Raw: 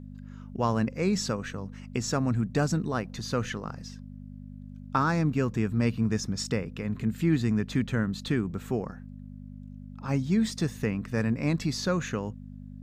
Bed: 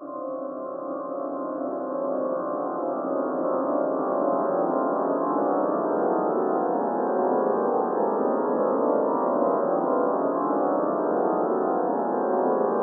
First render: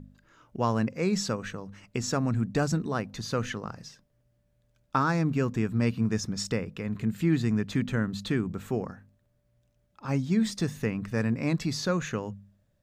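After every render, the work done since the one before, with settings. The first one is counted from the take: de-hum 50 Hz, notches 5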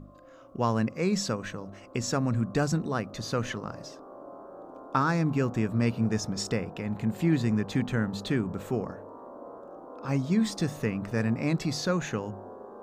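add bed -21.5 dB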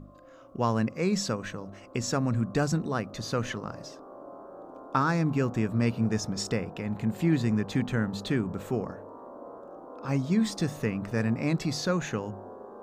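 no audible change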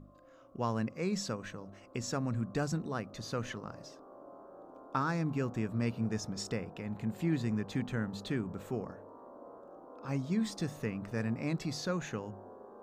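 trim -7 dB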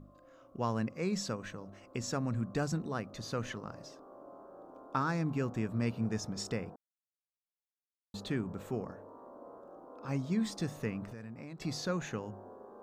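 6.76–8.14 s: mute; 11.04–11.62 s: compression 12:1, threshold -41 dBFS

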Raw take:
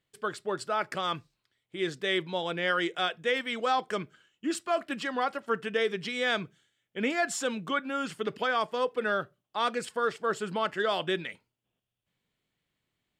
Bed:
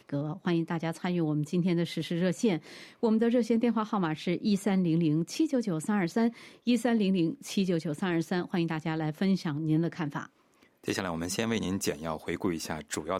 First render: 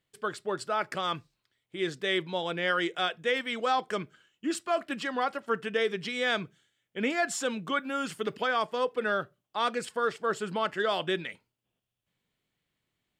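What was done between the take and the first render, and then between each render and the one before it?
7.73–8.36 s: treble shelf 8.9 kHz +9 dB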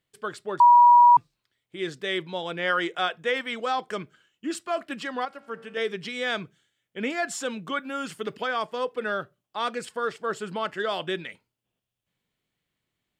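0.60–1.17 s: bleep 964 Hz -10.5 dBFS; 2.59–3.55 s: peaking EQ 1 kHz +5 dB 1.7 oct; 5.25–5.77 s: feedback comb 57 Hz, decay 1.8 s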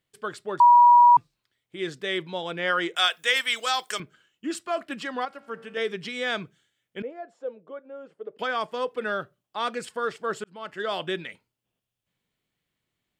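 2.96–4.00 s: tilt EQ +5.5 dB/octave; 7.02–8.39 s: band-pass filter 510 Hz, Q 4; 10.44–10.94 s: fade in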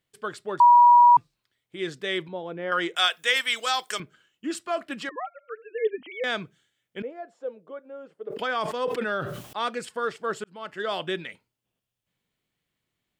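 2.28–2.72 s: band-pass filter 320 Hz, Q 0.58; 5.09–6.24 s: formants replaced by sine waves; 8.27–9.57 s: decay stretcher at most 45 dB/s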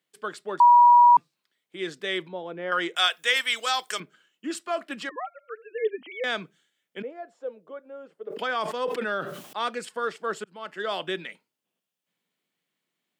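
steep high-pass 160 Hz; bass shelf 330 Hz -3 dB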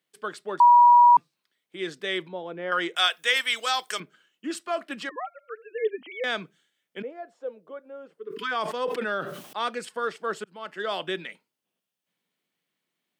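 band-stop 7.2 kHz, Q 19; 8.20–8.49 s: spectral replace 470–970 Hz before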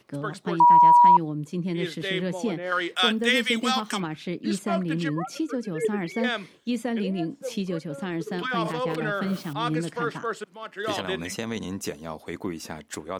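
add bed -1.5 dB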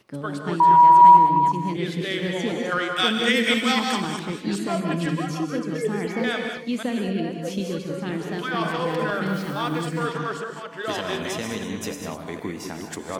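chunks repeated in reverse 253 ms, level -6 dB; gated-style reverb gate 230 ms rising, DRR 4.5 dB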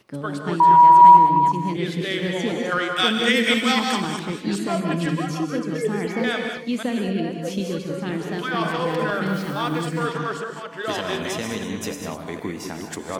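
trim +1.5 dB

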